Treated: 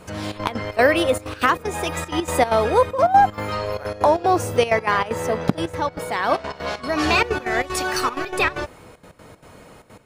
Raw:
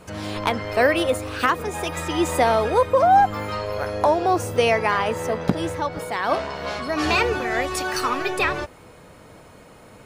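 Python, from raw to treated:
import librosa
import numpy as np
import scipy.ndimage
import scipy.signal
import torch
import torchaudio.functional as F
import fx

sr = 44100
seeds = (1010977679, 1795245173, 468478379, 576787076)

y = fx.step_gate(x, sr, bpm=191, pattern='xxxx.x.xx.x', floor_db=-12.0, edge_ms=4.5)
y = F.gain(torch.from_numpy(y), 2.0).numpy()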